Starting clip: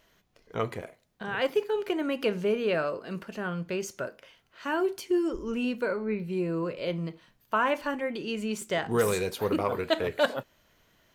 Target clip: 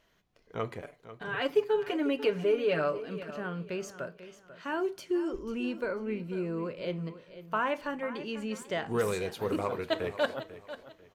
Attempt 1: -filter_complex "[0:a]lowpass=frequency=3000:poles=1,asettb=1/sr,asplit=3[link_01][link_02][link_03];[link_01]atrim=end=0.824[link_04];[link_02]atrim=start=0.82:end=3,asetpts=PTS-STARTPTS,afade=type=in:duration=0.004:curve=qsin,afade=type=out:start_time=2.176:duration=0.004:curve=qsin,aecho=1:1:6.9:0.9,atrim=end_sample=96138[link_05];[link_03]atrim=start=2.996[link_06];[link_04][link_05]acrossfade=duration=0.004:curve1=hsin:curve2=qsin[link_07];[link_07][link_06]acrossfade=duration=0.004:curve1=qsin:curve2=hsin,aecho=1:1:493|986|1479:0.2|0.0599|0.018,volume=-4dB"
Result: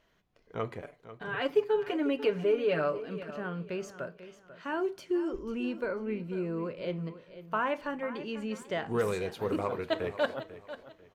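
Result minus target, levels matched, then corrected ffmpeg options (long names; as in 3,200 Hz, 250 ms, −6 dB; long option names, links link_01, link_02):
8,000 Hz band −4.5 dB
-filter_complex "[0:a]lowpass=frequency=6300:poles=1,asettb=1/sr,asplit=3[link_01][link_02][link_03];[link_01]atrim=end=0.824[link_04];[link_02]atrim=start=0.82:end=3,asetpts=PTS-STARTPTS,afade=type=in:duration=0.004:curve=qsin,afade=type=out:start_time=2.176:duration=0.004:curve=qsin,aecho=1:1:6.9:0.9,atrim=end_sample=96138[link_05];[link_03]atrim=start=2.996[link_06];[link_04][link_05]acrossfade=duration=0.004:curve1=hsin:curve2=qsin[link_07];[link_07][link_06]acrossfade=duration=0.004:curve1=qsin:curve2=hsin,aecho=1:1:493|986|1479:0.2|0.0599|0.018,volume=-4dB"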